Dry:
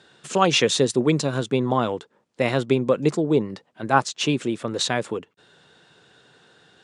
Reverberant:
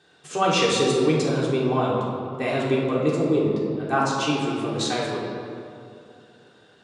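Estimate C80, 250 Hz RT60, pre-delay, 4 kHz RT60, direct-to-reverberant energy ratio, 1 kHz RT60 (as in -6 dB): 2.0 dB, 2.8 s, 3 ms, 1.4 s, -5.5 dB, 2.3 s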